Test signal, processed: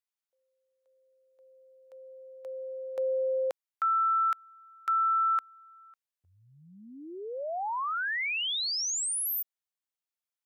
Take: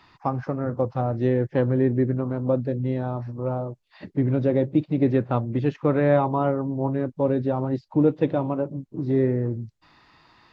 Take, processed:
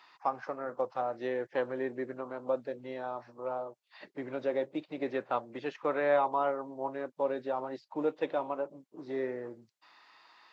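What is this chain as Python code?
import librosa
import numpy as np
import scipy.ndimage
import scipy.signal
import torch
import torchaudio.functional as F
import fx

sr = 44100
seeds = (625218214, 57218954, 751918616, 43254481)

y = scipy.signal.sosfilt(scipy.signal.butter(2, 630.0, 'highpass', fs=sr, output='sos'), x)
y = y * 10.0 ** (-2.5 / 20.0)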